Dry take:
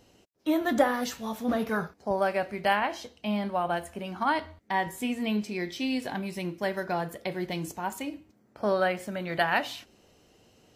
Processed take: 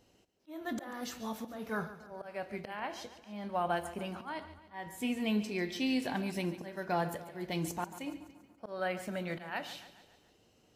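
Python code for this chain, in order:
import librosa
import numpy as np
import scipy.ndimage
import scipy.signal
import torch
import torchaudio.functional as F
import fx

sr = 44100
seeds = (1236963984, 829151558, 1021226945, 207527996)

y = fx.rider(x, sr, range_db=5, speed_s=2.0)
y = fx.auto_swell(y, sr, attack_ms=380.0)
y = fx.echo_feedback(y, sr, ms=142, feedback_pct=53, wet_db=-14.0)
y = y * 10.0 ** (-4.0 / 20.0)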